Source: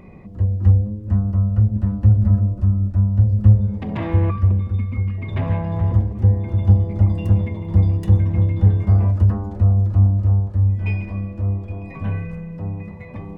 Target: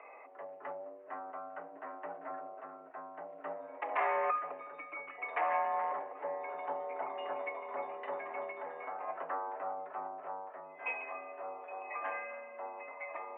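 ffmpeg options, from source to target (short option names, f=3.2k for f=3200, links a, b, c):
-filter_complex "[0:a]highpass=f=560:t=q:w=0.5412,highpass=f=560:t=q:w=1.307,lowpass=f=2.3k:t=q:w=0.5176,lowpass=f=2.3k:t=q:w=0.7071,lowpass=f=2.3k:t=q:w=1.932,afreqshift=69,asplit=3[a][b][c];[a]afade=t=out:st=8.51:d=0.02[d];[b]acompressor=threshold=-41dB:ratio=4,afade=t=in:st=8.51:d=0.02,afade=t=out:st=9.07:d=0.02[e];[c]afade=t=in:st=9.07:d=0.02[f];[d][e][f]amix=inputs=3:normalize=0,volume=1.5dB"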